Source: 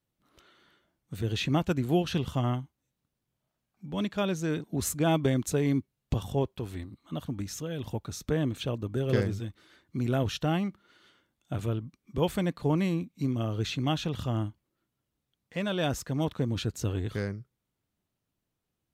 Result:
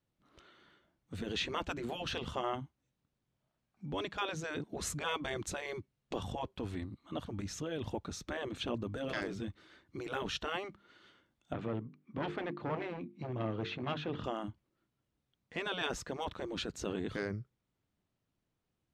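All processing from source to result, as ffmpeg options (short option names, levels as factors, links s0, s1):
-filter_complex "[0:a]asettb=1/sr,asplit=3[s0][s1][s2];[s0]atrim=end=11.534[s3];[s1]atrim=start=11.53:end=14.24,asetpts=PTS-STARTPTS,afade=t=in:d=0.004:c=qsin,afade=t=out:st=2.706:d=0.004:c=qsin,bandreject=f=50:t=h:w=6,bandreject=f=100:t=h:w=6,bandreject=f=150:t=h:w=6,bandreject=f=200:t=h:w=6,bandreject=f=250:t=h:w=6,bandreject=f=300:t=h:w=6,bandreject=f=350:t=h:w=6,bandreject=f=400:t=h:w=6,bandreject=f=450:t=h:w=6,volume=21.1,asoftclip=hard,volume=0.0473,highpass=160,lowpass=2600[s4];[s2]atrim=start=14.236[s5];[s3][s4]acrossfade=d=0.004:c1=hsin:c2=qsin[s6];[s6][s5]acrossfade=d=0.004:c1=qsin:c2=hsin,afftfilt=real='re*lt(hypot(re,im),0.158)':imag='im*lt(hypot(re,im),0.158)':win_size=1024:overlap=0.75,lowpass=9400,highshelf=f=5800:g=-8.5"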